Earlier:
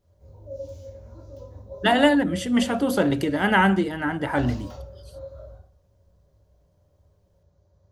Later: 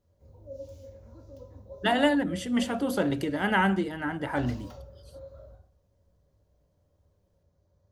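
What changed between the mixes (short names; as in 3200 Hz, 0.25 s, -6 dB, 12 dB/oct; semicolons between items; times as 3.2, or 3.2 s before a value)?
speech -5.5 dB; background: send -7.5 dB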